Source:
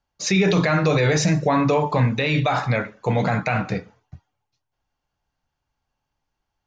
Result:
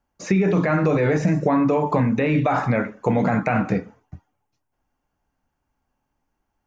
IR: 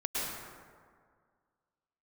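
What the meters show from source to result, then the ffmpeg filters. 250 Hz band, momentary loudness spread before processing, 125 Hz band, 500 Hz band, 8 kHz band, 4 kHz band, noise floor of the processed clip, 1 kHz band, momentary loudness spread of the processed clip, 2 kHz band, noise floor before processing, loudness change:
+2.5 dB, 6 LU, -1.5 dB, +0.5 dB, under -10 dB, under -10 dB, -77 dBFS, -0.5 dB, 4 LU, -3.0 dB, -80 dBFS, 0.0 dB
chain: -filter_complex "[0:a]acrossover=split=2600[a][b];[b]acompressor=threshold=-36dB:ratio=4:attack=1:release=60[c];[a][c]amix=inputs=2:normalize=0,equalizer=f=125:t=o:w=1:g=-4,equalizer=f=250:t=o:w=1:g=7,equalizer=f=4k:t=o:w=1:g=-11,acompressor=threshold=-19dB:ratio=6,volume=3.5dB"

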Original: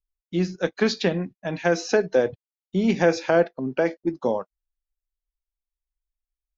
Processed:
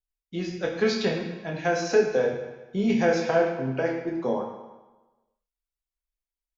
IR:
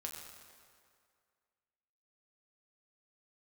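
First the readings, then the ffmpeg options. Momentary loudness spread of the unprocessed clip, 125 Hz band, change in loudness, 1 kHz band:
9 LU, -3.0 dB, -2.0 dB, -1.0 dB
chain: -filter_complex "[0:a]asplit=2[a][b];[b]adelay=30,volume=-7.5dB[c];[a][c]amix=inputs=2:normalize=0[d];[1:a]atrim=start_sample=2205,asetrate=79380,aresample=44100[e];[d][e]afir=irnorm=-1:irlink=0,volume=4dB"

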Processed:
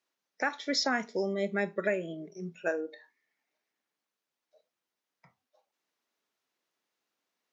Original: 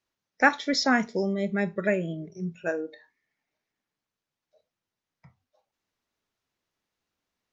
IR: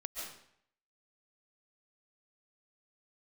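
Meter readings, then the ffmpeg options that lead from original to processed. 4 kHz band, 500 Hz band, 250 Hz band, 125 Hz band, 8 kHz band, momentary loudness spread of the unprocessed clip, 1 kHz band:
-2.5 dB, -3.0 dB, -8.0 dB, -9.0 dB, n/a, 12 LU, -8.0 dB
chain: -af "highpass=280,alimiter=limit=-17.5dB:level=0:latency=1:release=428"

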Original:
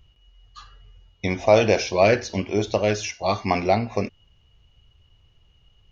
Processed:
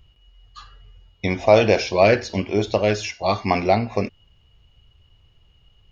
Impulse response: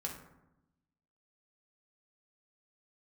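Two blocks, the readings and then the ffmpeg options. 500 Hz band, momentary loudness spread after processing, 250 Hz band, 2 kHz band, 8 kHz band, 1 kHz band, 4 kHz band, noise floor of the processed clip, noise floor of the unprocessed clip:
+2.0 dB, 11 LU, +2.0 dB, +2.0 dB, n/a, +2.0 dB, +2.0 dB, -58 dBFS, -60 dBFS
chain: -af "bandreject=f=6k:w=9.3,volume=2dB"

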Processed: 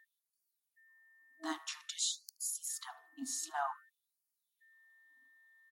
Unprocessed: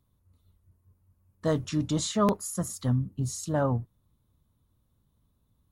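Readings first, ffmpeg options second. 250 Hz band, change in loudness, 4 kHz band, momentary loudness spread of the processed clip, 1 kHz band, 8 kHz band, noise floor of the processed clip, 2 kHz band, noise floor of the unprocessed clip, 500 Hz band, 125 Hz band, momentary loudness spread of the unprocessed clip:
-20.0 dB, -10.5 dB, -2.0 dB, 10 LU, -7.5 dB, -2.0 dB, under -85 dBFS, -3.0 dB, -72 dBFS, -21.0 dB, under -40 dB, 7 LU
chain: -filter_complex "[0:a]afftfilt=real='re*(1-between(b*sr/4096,320,650))':imag='im*(1-between(b*sr/4096,320,650))':win_size=4096:overlap=0.75,bandreject=f=73.72:t=h:w=4,bandreject=f=147.44:t=h:w=4,bandreject=f=221.16:t=h:w=4,bandreject=f=294.88:t=h:w=4,bandreject=f=368.6:t=h:w=4,bandreject=f=442.32:t=h:w=4,bandreject=f=516.04:t=h:w=4,bandreject=f=589.76:t=h:w=4,bandreject=f=663.48:t=h:w=4,bandreject=f=737.2:t=h:w=4,bandreject=f=810.92:t=h:w=4,bandreject=f=884.64:t=h:w=4,bandreject=f=958.36:t=h:w=4,bandreject=f=1.03208k:t=h:w=4,bandreject=f=1.1058k:t=h:w=4,bandreject=f=1.17952k:t=h:w=4,bandreject=f=1.25324k:t=h:w=4,bandreject=f=1.32696k:t=h:w=4,bandreject=f=1.40068k:t=h:w=4,bandreject=f=1.4744k:t=h:w=4,bandreject=f=1.54812k:t=h:w=4,bandreject=f=1.62184k:t=h:w=4,bandreject=f=1.69556k:t=h:w=4,bandreject=f=1.76928k:t=h:w=4,bandreject=f=1.843k:t=h:w=4,bandreject=f=1.91672k:t=h:w=4,bandreject=f=1.99044k:t=h:w=4,bandreject=f=2.06416k:t=h:w=4,bandreject=f=2.13788k:t=h:w=4,bandreject=f=2.2116k:t=h:w=4,bandreject=f=2.28532k:t=h:w=4,bandreject=f=2.35904k:t=h:w=4,bandreject=f=2.43276k:t=h:w=4,bandreject=f=2.50648k:t=h:w=4,bandreject=f=2.5802k:t=h:w=4,bandreject=f=2.65392k:t=h:w=4,bandreject=f=2.72764k:t=h:w=4,asplit=2[a][b];[b]adelay=75,lowpass=f=3.6k:p=1,volume=-19.5dB,asplit=2[c][d];[d]adelay=75,lowpass=f=3.6k:p=1,volume=0.44,asplit=2[e][f];[f]adelay=75,lowpass=f=3.6k:p=1,volume=0.44[g];[c][e][g]amix=inputs=3:normalize=0[h];[a][h]amix=inputs=2:normalize=0,aeval=exprs='val(0)+0.000891*sin(2*PI*1800*n/s)':c=same,afftfilt=real='re*gte(b*sr/1024,250*pow(4400/250,0.5+0.5*sin(2*PI*0.52*pts/sr)))':imag='im*gte(b*sr/1024,250*pow(4400/250,0.5+0.5*sin(2*PI*0.52*pts/sr)))':win_size=1024:overlap=0.75,volume=-2dB"

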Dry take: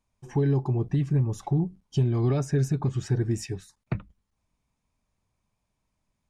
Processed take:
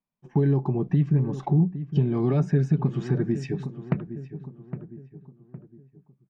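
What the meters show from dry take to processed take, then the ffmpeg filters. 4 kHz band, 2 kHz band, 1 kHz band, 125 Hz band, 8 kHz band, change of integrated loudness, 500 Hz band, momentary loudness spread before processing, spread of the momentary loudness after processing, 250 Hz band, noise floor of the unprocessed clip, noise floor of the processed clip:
n/a, +0.5 dB, +2.5 dB, +1.5 dB, under -10 dB, +2.0 dB, +2.0 dB, 11 LU, 16 LU, +4.0 dB, -79 dBFS, -68 dBFS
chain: -filter_complex "[0:a]agate=range=-17dB:threshold=-41dB:ratio=16:detection=peak,lowshelf=f=120:t=q:w=3:g=-10.5,asplit=2[a][b];[b]adelay=811,lowpass=f=1.4k:p=1,volume=-14.5dB,asplit=2[c][d];[d]adelay=811,lowpass=f=1.4k:p=1,volume=0.41,asplit=2[e][f];[f]adelay=811,lowpass=f=1.4k:p=1,volume=0.41,asplit=2[g][h];[h]adelay=811,lowpass=f=1.4k:p=1,volume=0.41[i];[a][c][e][g][i]amix=inputs=5:normalize=0,acompressor=threshold=-34dB:ratio=1.5,lowpass=3k,volume=6dB"

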